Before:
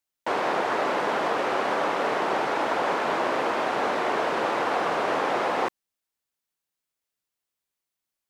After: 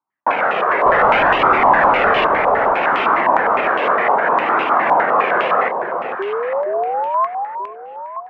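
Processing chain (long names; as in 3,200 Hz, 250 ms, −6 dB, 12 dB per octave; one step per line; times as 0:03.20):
adaptive Wiener filter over 9 samples
high-pass filter 150 Hz 12 dB per octave
0:00.86–0:02.27: leveller curve on the samples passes 3
flanger 0.65 Hz, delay 0.8 ms, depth 1.1 ms, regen −32%
0:06.19–0:07.27: sound drawn into the spectrogram rise 380–1,100 Hz −32 dBFS
on a send: delay that swaps between a low-pass and a high-pass 467 ms, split 840 Hz, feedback 53%, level −5 dB
on the sum: boost into a limiter +19 dB
low-pass on a step sequencer 9.8 Hz 970–2,800 Hz
level −9.5 dB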